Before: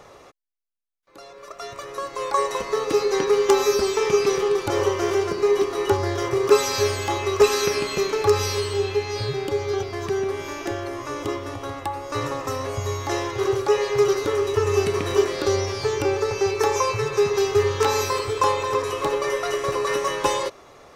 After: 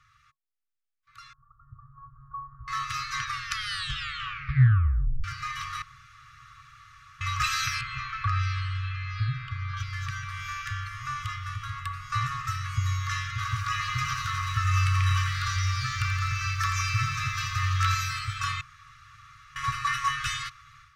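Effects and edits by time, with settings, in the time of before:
0:01.33–0:02.68: Gaussian smoothing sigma 12 samples
0:03.24: tape stop 2.00 s
0:05.82–0:07.21: fill with room tone
0:07.81–0:09.77: Bessel low-pass filter 2,100 Hz
0:13.32–0:17.95: feedback echo at a low word length 85 ms, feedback 80%, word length 8 bits, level −8.5 dB
0:18.61–0:19.56: fill with room tone
whole clip: brick-wall band-stop 140–1,100 Hz; high-shelf EQ 4,500 Hz −12 dB; automatic gain control gain up to 11.5 dB; level −9 dB

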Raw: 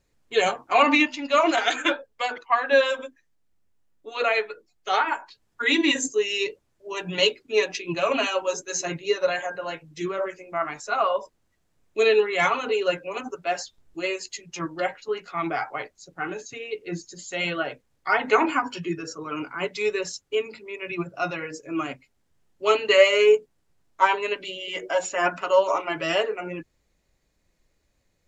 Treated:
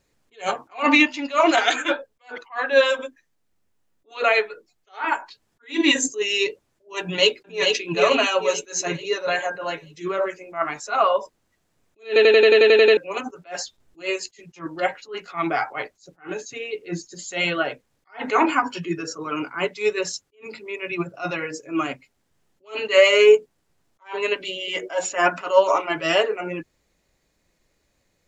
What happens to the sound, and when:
0:07.00–0:07.66: delay throw 440 ms, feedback 45%, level −5 dB
0:12.07: stutter in place 0.09 s, 10 plays
whole clip: low-shelf EQ 100 Hz −7.5 dB; boost into a limiter +7 dB; level that may rise only so fast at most 230 dB per second; level −2.5 dB

